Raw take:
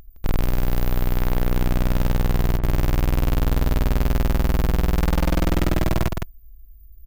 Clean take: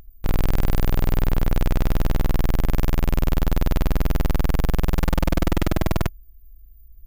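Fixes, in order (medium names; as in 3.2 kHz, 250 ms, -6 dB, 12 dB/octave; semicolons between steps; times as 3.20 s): clip repair -13 dBFS; interpolate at 2.59 s, 39 ms; inverse comb 163 ms -5 dB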